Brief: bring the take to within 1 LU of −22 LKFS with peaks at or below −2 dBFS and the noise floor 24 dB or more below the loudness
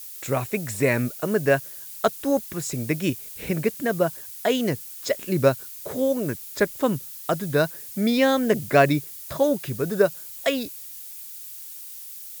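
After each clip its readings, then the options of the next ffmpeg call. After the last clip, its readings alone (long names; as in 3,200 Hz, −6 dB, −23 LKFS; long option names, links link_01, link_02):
background noise floor −39 dBFS; target noise floor −49 dBFS; integrated loudness −24.5 LKFS; sample peak −5.0 dBFS; target loudness −22.0 LKFS
→ -af "afftdn=noise_reduction=10:noise_floor=-39"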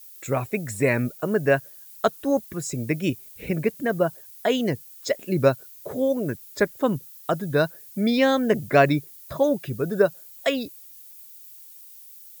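background noise floor −46 dBFS; target noise floor −49 dBFS
→ -af "afftdn=noise_reduction=6:noise_floor=-46"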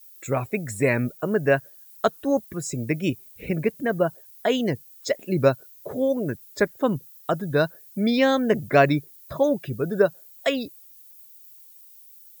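background noise floor −50 dBFS; integrated loudness −24.5 LKFS; sample peak −5.5 dBFS; target loudness −22.0 LKFS
→ -af "volume=2.5dB"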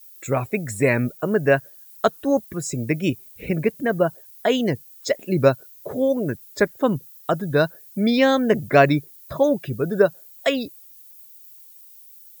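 integrated loudness −22.0 LKFS; sample peak −3.0 dBFS; background noise floor −47 dBFS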